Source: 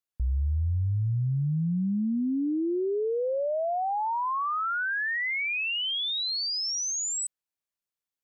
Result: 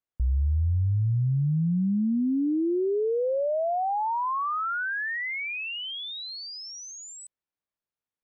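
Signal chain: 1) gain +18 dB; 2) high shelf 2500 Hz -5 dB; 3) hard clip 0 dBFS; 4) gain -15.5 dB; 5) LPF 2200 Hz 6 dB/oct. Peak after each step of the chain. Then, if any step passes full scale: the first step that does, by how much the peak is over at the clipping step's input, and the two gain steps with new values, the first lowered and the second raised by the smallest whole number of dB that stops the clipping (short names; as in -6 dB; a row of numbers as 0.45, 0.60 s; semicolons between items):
-4.5, -4.5, -4.5, -20.0, -20.0 dBFS; no overload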